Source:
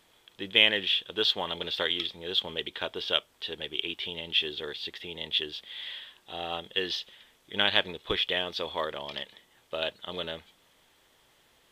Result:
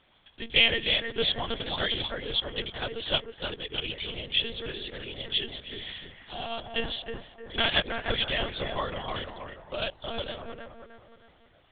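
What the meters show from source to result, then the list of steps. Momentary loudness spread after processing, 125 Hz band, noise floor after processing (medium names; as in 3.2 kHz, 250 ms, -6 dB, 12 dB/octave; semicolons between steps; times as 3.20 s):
15 LU, +8.0 dB, -60 dBFS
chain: on a send: bucket-brigade echo 313 ms, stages 4096, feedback 43%, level -4 dB; on the sum: monotone LPC vocoder at 8 kHz 230 Hz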